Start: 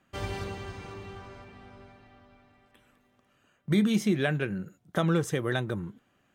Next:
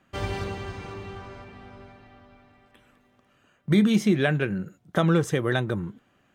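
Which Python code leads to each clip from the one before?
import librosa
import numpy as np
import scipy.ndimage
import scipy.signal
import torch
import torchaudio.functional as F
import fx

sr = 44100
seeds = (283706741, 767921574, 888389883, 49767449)

y = fx.high_shelf(x, sr, hz=6700.0, db=-5.5)
y = y * 10.0 ** (4.5 / 20.0)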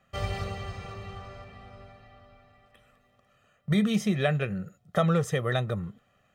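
y = x + 0.74 * np.pad(x, (int(1.6 * sr / 1000.0), 0))[:len(x)]
y = y * 10.0 ** (-4.0 / 20.0)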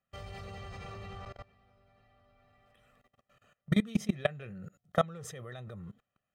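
y = fx.level_steps(x, sr, step_db=22)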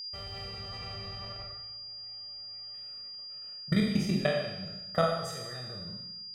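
y = fx.spec_trails(x, sr, decay_s=0.54)
y = y + 10.0 ** (-36.0 / 20.0) * np.sin(2.0 * np.pi * 4800.0 * np.arange(len(y)) / sr)
y = fx.rev_schroeder(y, sr, rt60_s=1.0, comb_ms=32, drr_db=3.5)
y = y * 10.0 ** (-2.0 / 20.0)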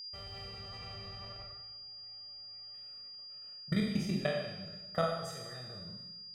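y = fx.echo_feedback(x, sr, ms=241, feedback_pct=49, wet_db=-23.0)
y = y * 10.0 ** (-5.0 / 20.0)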